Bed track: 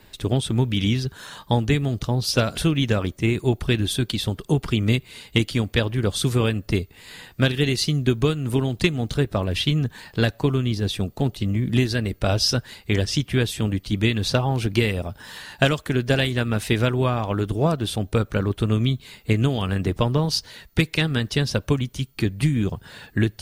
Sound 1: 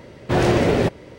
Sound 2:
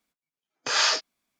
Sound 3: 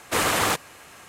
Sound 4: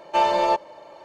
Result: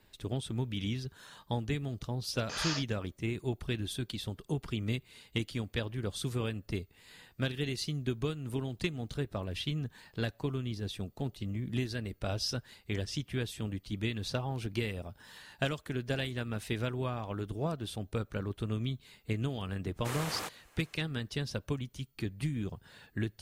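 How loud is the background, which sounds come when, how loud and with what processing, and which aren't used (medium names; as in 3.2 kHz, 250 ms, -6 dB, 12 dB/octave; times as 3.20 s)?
bed track -13.5 dB
1.83 s: add 2 -13 dB
19.93 s: add 3 -16.5 dB, fades 0.10 s
not used: 1, 4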